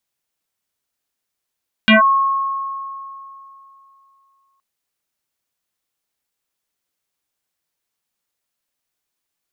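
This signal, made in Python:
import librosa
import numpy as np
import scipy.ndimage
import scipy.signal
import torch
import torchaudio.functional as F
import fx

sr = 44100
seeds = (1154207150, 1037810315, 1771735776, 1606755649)

y = fx.fm2(sr, length_s=2.72, level_db=-6.5, carrier_hz=1090.0, ratio=0.4, index=5.2, index_s=0.14, decay_s=2.94, shape='linear')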